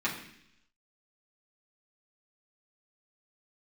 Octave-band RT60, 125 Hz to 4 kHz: 0.90, 0.90, 0.75, 0.70, 0.90, 0.95 seconds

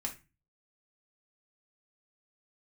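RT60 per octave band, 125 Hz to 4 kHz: 0.55, 0.40, 0.30, 0.30, 0.30, 0.25 seconds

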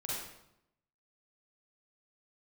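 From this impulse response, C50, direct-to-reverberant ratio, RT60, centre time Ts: −3.0 dB, −7.0 dB, 0.80 s, 80 ms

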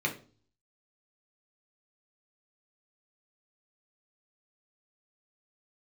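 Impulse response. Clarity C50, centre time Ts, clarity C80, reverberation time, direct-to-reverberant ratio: 12.5 dB, 13 ms, 17.5 dB, 0.40 s, 0.0 dB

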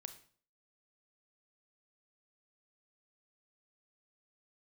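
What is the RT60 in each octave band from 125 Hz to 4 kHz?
0.50, 0.50, 0.50, 0.45, 0.40, 0.40 seconds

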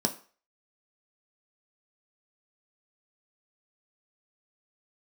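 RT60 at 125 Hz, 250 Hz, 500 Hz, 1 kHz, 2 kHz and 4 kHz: 0.30, 0.35, 0.40, 0.40, 0.40, 0.40 seconds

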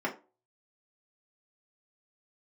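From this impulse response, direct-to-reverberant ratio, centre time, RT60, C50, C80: −4.0 dB, 14 ms, non-exponential decay, 13.0 dB, 19.0 dB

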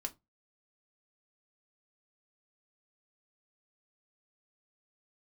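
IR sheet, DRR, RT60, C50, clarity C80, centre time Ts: 4.0 dB, 0.20 s, 22.0 dB, 30.5 dB, 5 ms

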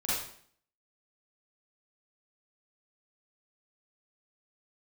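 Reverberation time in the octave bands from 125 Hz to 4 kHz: 0.60, 0.65, 0.60, 0.55, 0.55, 0.50 seconds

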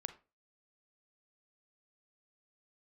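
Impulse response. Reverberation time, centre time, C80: 0.30 s, 6 ms, 19.5 dB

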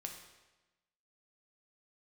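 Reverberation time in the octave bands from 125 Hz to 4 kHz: 1.2, 1.2, 1.1, 1.1, 1.1, 1.0 seconds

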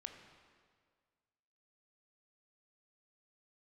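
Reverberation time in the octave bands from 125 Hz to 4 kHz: 1.9, 1.8, 1.9, 1.8, 1.6, 1.5 seconds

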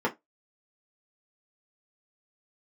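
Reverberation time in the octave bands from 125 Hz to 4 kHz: 0.10, 0.20, 0.20, 0.15, 0.15, 0.15 seconds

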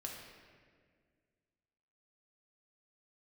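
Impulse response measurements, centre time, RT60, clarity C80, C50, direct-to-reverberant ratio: 71 ms, 1.9 s, 4.0 dB, 2.0 dB, −1.5 dB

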